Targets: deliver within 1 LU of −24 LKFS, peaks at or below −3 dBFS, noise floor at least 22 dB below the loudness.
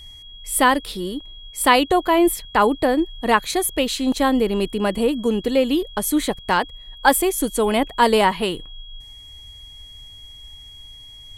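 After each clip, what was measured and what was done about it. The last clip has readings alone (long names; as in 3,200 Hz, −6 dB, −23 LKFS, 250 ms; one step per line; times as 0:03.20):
interfering tone 3,300 Hz; level of the tone −40 dBFS; integrated loudness −19.5 LKFS; sample peak −1.5 dBFS; target loudness −24.0 LKFS
→ notch filter 3,300 Hz, Q 30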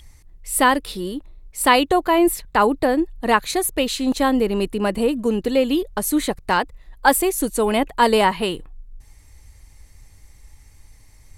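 interfering tone none found; integrated loudness −19.5 LKFS; sample peak −1.5 dBFS; target loudness −24.0 LKFS
→ level −4.5 dB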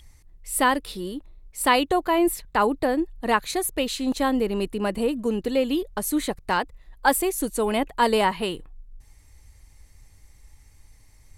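integrated loudness −24.0 LKFS; sample peak −6.0 dBFS; background noise floor −54 dBFS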